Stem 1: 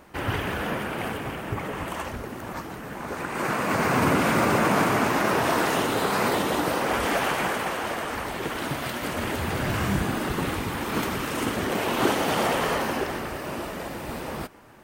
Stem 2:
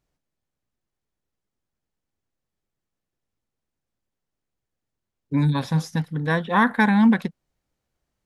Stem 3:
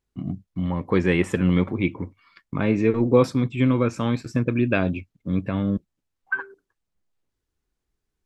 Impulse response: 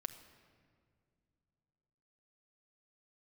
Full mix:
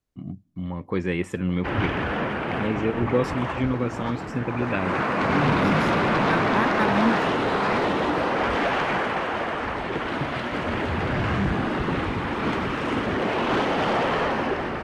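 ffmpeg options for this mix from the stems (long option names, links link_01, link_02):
-filter_complex "[0:a]lowpass=3000,aeval=exprs='0.316*sin(PI/2*2.24*val(0)/0.316)':channel_layout=same,adelay=1500,volume=-7.5dB[link_01];[1:a]volume=-7.5dB[link_02];[2:a]volume=-6dB,asplit=2[link_03][link_04];[link_04]volume=-22dB[link_05];[3:a]atrim=start_sample=2205[link_06];[link_05][link_06]afir=irnorm=-1:irlink=0[link_07];[link_01][link_02][link_03][link_07]amix=inputs=4:normalize=0"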